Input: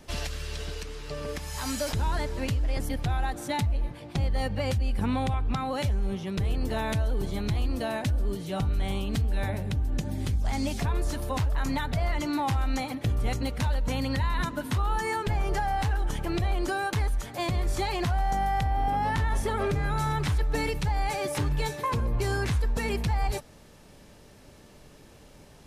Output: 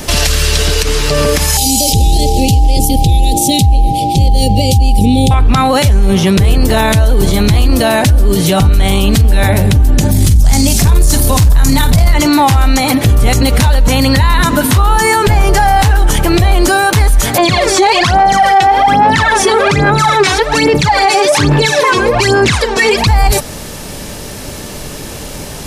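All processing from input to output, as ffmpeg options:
-filter_complex "[0:a]asettb=1/sr,asplit=3[s0][s1][s2];[s0]atrim=end=1.574[s3];[s1]atrim=start=1.57:end=5.31,asetpts=PTS-STARTPTS,afade=t=in:d=0.004:c=qsin,afade=t=out:st=3.736:d=0.004:c=qsin,asuperstop=centerf=1200:order=8:qfactor=0.52,aeval=exprs='val(0)+0.0126*sin(2*PI*800*n/s)':c=same[s4];[s2]atrim=start=5.306[s5];[s3][s4]acrossfade=d=0.004:c1=hsin:c2=qsin[s6];[s6][s5]acrossfade=d=0.004:c1=qsin:c2=hsin,asettb=1/sr,asplit=3[s7][s8][s9];[s7]atrim=end=10.114[s10];[s8]atrim=start=10.11:end=12.14,asetpts=PTS-STARTPTS,afade=t=in:d=0.004:c=qsin,afade=t=out:st=2.026:d=0.004:c=qsin,bass=f=250:g=9,treble=f=4000:g=9,asplit=2[s11][s12];[s12]adelay=48,volume=0.251[s13];[s11][s13]amix=inputs=2:normalize=0,atrim=end_sample=89523,aecho=1:1:617:0.158,atrim=end_sample=89523[s14];[s9]atrim=start=12.136[s15];[s10][s14]acrossfade=d=0.004:c1=hsin:c2=qsin[s16];[s16][s15]acrossfade=d=0.004:c1=qsin:c2=hsin,asettb=1/sr,asplit=3[s17][s18][s19];[s17]atrim=end=17.384[s20];[s18]atrim=start=17.38:end=23.07,asetpts=PTS-STARTPTS,afade=t=in:d=0.004:c=qsin,afade=t=out:st=5.686:d=0.004:c=qsin,aphaser=in_gain=1:out_gain=1:delay=2.7:decay=0.78:speed=1.2:type=sinusoidal,highpass=240,lowpass=5700[s21];[s19]atrim=start=23.066[s22];[s20][s21]acrossfade=d=0.004:c1=hsin:c2=qsin[s23];[s23][s22]acrossfade=d=0.004:c1=qsin:c2=hsin,highshelf=f=4800:g=9,acontrast=79,alimiter=level_in=10:limit=0.891:release=50:level=0:latency=1,volume=0.891"

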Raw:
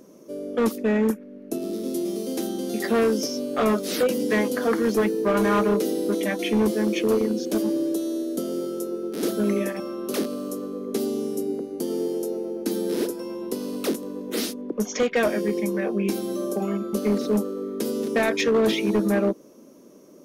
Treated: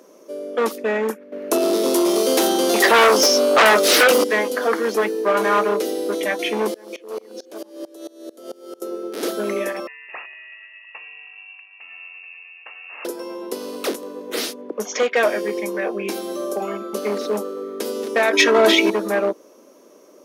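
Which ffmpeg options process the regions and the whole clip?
-filter_complex "[0:a]asettb=1/sr,asplit=3[s0][s1][s2];[s0]atrim=end=1.324[s3];[s1]atrim=start=1.32:end=4.24,asetpts=PTS-STARTPTS,afade=t=in:d=0.004:c=qsin,afade=t=out:st=2.916:d=0.004:c=qsin,highpass=f=310:p=1,aeval=exprs='0.237*sin(PI/2*3.16*val(0)/0.237)':c=same[s4];[s2]atrim=start=4.236[s5];[s3][s4]acrossfade=d=0.004:c1=hsin:c2=qsin[s6];[s6][s5]acrossfade=d=0.004:c1=qsin:c2=hsin,asettb=1/sr,asplit=3[s7][s8][s9];[s7]atrim=end=6.744[s10];[s8]atrim=start=6.74:end=8.82,asetpts=PTS-STARTPTS,afade=t=in:d=0.004:c=qsin,afade=t=out:st=2.076:d=0.004:c=qsin,acrossover=split=320|1200|2600[s11][s12][s13][s14];[s11]acompressor=threshold=0.00891:ratio=3[s15];[s12]acompressor=threshold=0.0501:ratio=3[s16];[s13]acompressor=threshold=0.00224:ratio=3[s17];[s14]acompressor=threshold=0.00891:ratio=3[s18];[s15][s16][s17][s18]amix=inputs=4:normalize=0,aeval=exprs='val(0)*pow(10,-25*if(lt(mod(-4.5*n/s,1),2*abs(-4.5)/1000),1-mod(-4.5*n/s,1)/(2*abs(-4.5)/1000),(mod(-4.5*n/s,1)-2*abs(-4.5)/1000)/(1-2*abs(-4.5)/1000))/20)':c=same[s19];[s9]atrim=start=8.816[s20];[s10][s19]acrossfade=d=0.004:c1=hsin:c2=qsin[s21];[s21][s20]acrossfade=d=0.004:c1=qsin:c2=hsin,asettb=1/sr,asplit=3[s22][s23][s24];[s22]atrim=end=9.874[s25];[s23]atrim=start=9.87:end=13.05,asetpts=PTS-STARTPTS,afade=t=in:d=0.004:c=qsin,afade=t=out:st=3.176:d=0.004:c=qsin,highpass=1200,bandreject=f=1600:w=5.9,lowpass=f=2600:t=q:w=0.5098,lowpass=f=2600:t=q:w=0.6013,lowpass=f=2600:t=q:w=0.9,lowpass=f=2600:t=q:w=2.563,afreqshift=-3100[s26];[s24]atrim=start=13.046[s27];[s25][s26]acrossfade=d=0.004:c1=hsin:c2=qsin[s28];[s28][s27]acrossfade=d=0.004:c1=qsin:c2=hsin,asettb=1/sr,asplit=3[s29][s30][s31];[s29]atrim=end=18.334[s32];[s30]atrim=start=18.33:end=18.9,asetpts=PTS-STARTPTS,afade=t=in:d=0.004:c=qsin,afade=t=out:st=0.566:d=0.004:c=qsin,aecho=1:1:3.1:0.88,atrim=end_sample=25137,acontrast=29[s33];[s31]atrim=start=18.896[s34];[s32][s33]acrossfade=d=0.004:c1=hsin:c2=qsin[s35];[s35][s34]acrossfade=d=0.004:c1=qsin:c2=hsin,highpass=510,highshelf=f=5100:g=-6,acontrast=80"

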